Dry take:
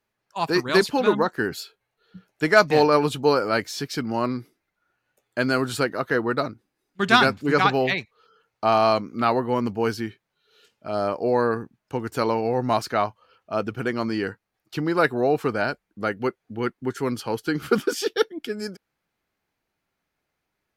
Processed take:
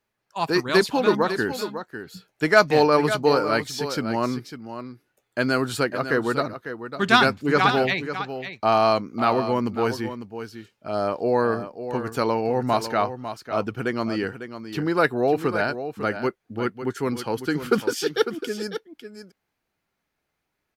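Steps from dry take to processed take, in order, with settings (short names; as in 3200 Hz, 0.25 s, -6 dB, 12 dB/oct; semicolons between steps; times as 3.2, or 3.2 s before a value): echo 0.55 s -10.5 dB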